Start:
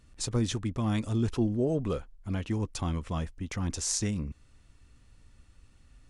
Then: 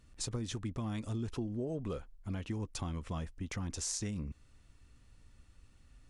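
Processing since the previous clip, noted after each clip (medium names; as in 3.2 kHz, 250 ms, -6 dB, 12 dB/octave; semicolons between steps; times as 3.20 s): compression, threshold -31 dBFS, peak gain reduction 9 dB; trim -3 dB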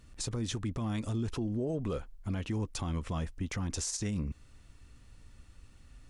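peak limiter -31.5 dBFS, peak gain reduction 10 dB; trim +5.5 dB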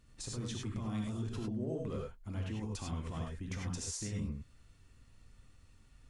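gated-style reverb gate 120 ms rising, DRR -0.5 dB; trim -8 dB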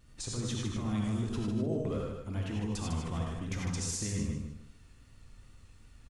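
vibrato 2.6 Hz 49 cents; feedback delay 152 ms, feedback 26%, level -6 dB; trim +4 dB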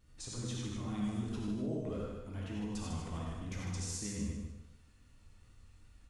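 plate-style reverb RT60 0.72 s, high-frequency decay 1×, pre-delay 0 ms, DRR 2.5 dB; trim -7 dB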